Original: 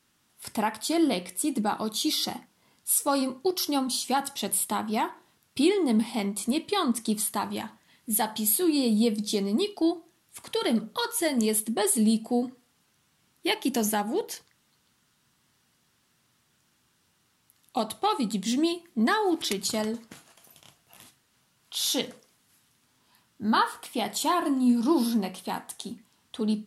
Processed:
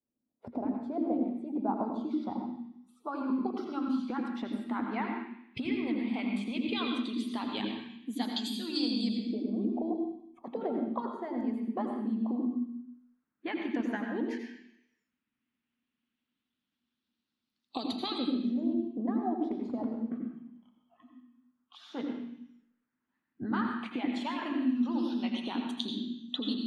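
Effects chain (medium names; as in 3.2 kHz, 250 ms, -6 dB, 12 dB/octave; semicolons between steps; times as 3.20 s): spectral noise reduction 21 dB; harmonic-percussive split harmonic -15 dB; peaking EQ 240 Hz +14.5 dB 0.33 oct; compression 10:1, threshold -35 dBFS, peak gain reduction 16 dB; LFO low-pass saw up 0.11 Hz 540–5000 Hz; on a send: reverberation RT60 0.75 s, pre-delay 76 ms, DRR 2 dB; on the sum: trim +1.5 dB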